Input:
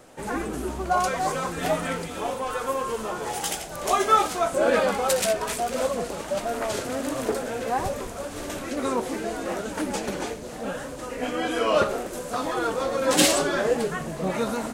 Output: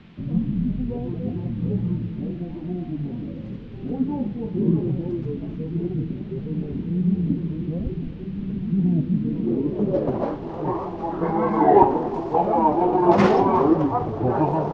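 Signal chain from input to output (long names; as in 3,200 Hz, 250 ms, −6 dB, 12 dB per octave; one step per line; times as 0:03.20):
high-shelf EQ 4,500 Hz +11.5 dB
pitch shifter −7 semitones
low-pass filter sweep 190 Hz → 850 Hz, 0:09.19–0:10.31
noise in a band 310–3,300 Hz −62 dBFS
on a send: single-tap delay 359 ms −19 dB
on the sum: level +4 dB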